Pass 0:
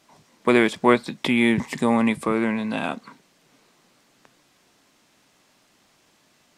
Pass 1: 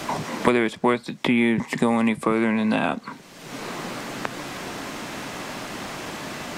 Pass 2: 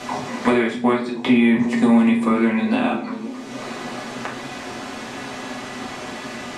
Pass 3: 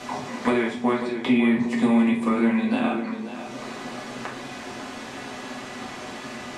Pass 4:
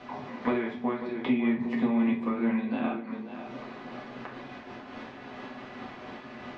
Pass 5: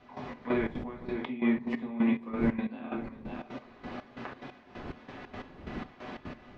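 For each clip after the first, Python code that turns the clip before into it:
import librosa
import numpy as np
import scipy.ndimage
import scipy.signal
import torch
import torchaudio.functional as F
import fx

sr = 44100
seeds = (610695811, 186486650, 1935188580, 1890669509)

y1 = fx.band_squash(x, sr, depth_pct=100)
y2 = scipy.signal.sosfilt(scipy.signal.bessel(8, 8600.0, 'lowpass', norm='mag', fs=sr, output='sos'), y1)
y2 = fx.echo_stepped(y2, sr, ms=269, hz=180.0, octaves=0.7, feedback_pct=70, wet_db=-7)
y2 = fx.rev_fdn(y2, sr, rt60_s=0.47, lf_ratio=0.7, hf_ratio=0.9, size_ms=24.0, drr_db=-3.0)
y2 = F.gain(torch.from_numpy(y2), -3.5).numpy()
y3 = y2 + 10.0 ** (-11.0 / 20.0) * np.pad(y2, (int(547 * sr / 1000.0), 0))[:len(y2)]
y3 = F.gain(torch.from_numpy(y3), -4.5).numpy()
y4 = fx.air_absorb(y3, sr, metres=260.0)
y4 = fx.am_noise(y4, sr, seeds[0], hz=5.7, depth_pct=60)
y4 = F.gain(torch.from_numpy(y4), -3.0).numpy()
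y5 = fx.dmg_wind(y4, sr, seeds[1], corner_hz=300.0, level_db=-43.0)
y5 = fx.step_gate(y5, sr, bpm=180, pattern='..xx..xx.x.', floor_db=-12.0, edge_ms=4.5)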